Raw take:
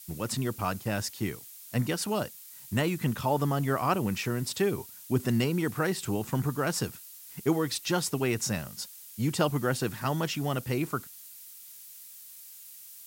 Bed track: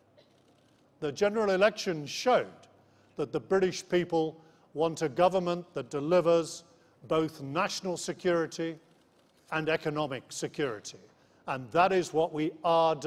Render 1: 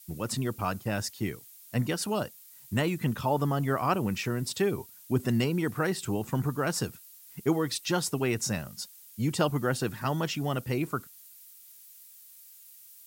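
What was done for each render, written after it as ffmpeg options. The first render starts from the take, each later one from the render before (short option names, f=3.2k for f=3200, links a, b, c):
-af "afftdn=nr=6:nf=-48"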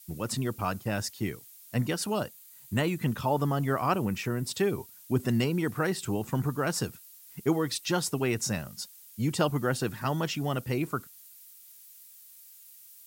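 -filter_complex "[0:a]asettb=1/sr,asplit=3[a][b][c];[a]atrim=end=2.244[d];[b]atrim=start=2.24:end=3,asetpts=PTS-STARTPTS,afade=t=in:d=0.004:c=qsin,afade=t=out:st=0.756:d=0.004:c=qsin,bandreject=f=5.4k:w=12[e];[c]atrim=start=2.996[f];[d][e]acrossfade=d=0.004:c1=hsin:c2=qsin[g];[g][f]acrossfade=d=0.004:c1=qsin:c2=hsin,asettb=1/sr,asplit=3[h][i][j];[h]atrim=end=4.054[k];[i]atrim=start=4.05:end=4.49,asetpts=PTS-STARTPTS,afade=t=in:d=0.004:c=qsin,afade=t=out:st=0.436:d=0.004:c=qsin,equalizer=f=4.4k:t=o:w=1.5:g=-4[l];[j]atrim=start=4.486[m];[k][l]acrossfade=d=0.004:c1=hsin:c2=qsin[n];[n][m]acrossfade=d=0.004:c1=qsin:c2=hsin"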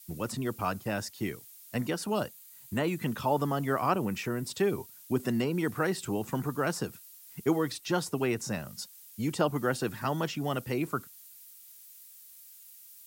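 -filter_complex "[0:a]acrossover=split=180|1600[a][b][c];[a]acompressor=threshold=-40dB:ratio=6[d];[c]alimiter=level_in=4dB:limit=-24dB:level=0:latency=1:release=161,volume=-4dB[e];[d][b][e]amix=inputs=3:normalize=0"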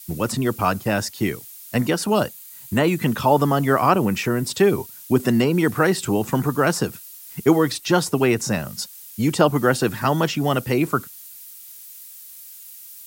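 -af "volume=11dB,alimiter=limit=-3dB:level=0:latency=1"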